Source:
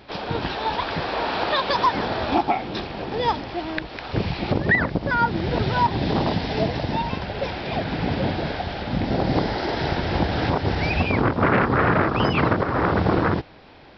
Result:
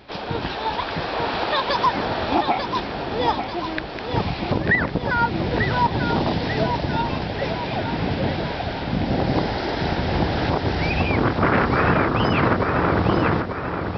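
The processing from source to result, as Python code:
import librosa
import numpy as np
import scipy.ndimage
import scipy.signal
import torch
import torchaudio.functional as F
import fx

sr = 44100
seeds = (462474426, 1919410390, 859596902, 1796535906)

y = fx.echo_feedback(x, sr, ms=891, feedback_pct=49, wet_db=-7.0)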